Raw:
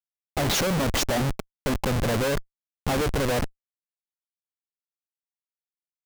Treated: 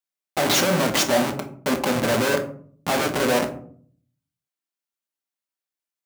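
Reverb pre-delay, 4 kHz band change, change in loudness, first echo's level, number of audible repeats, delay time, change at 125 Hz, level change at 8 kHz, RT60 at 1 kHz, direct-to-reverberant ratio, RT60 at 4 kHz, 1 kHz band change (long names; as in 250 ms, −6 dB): 4 ms, +5.0 dB, +4.0 dB, no echo audible, no echo audible, no echo audible, −3.5 dB, +4.5 dB, 0.50 s, 4.0 dB, 0.25 s, +5.0 dB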